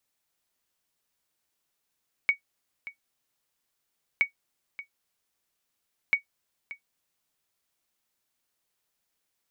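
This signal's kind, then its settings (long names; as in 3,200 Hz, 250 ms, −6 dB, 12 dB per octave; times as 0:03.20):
ping with an echo 2,240 Hz, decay 0.11 s, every 1.92 s, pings 3, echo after 0.58 s, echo −16.5 dB −13 dBFS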